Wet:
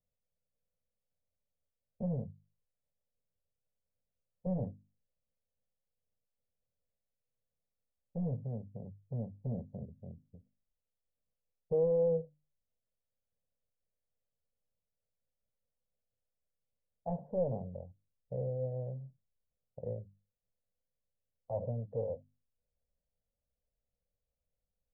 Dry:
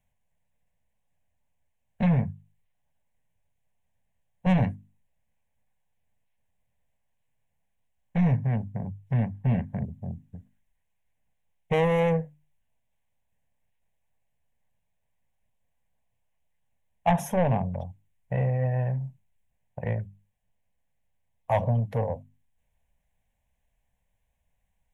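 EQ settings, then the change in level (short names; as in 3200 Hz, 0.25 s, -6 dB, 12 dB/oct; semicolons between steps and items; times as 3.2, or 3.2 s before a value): ladder low-pass 570 Hz, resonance 60%; -3.5 dB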